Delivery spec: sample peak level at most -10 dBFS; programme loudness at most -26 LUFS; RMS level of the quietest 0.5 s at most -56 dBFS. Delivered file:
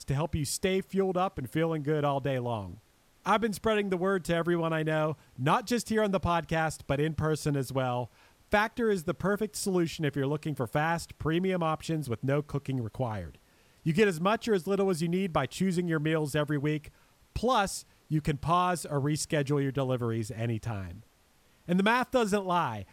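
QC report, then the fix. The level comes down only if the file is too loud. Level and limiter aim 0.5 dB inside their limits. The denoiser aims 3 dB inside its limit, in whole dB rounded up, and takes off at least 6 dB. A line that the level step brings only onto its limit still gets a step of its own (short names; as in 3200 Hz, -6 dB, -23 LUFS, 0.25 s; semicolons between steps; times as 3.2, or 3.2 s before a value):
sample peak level -13.0 dBFS: OK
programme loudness -29.5 LUFS: OK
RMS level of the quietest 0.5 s -64 dBFS: OK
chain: none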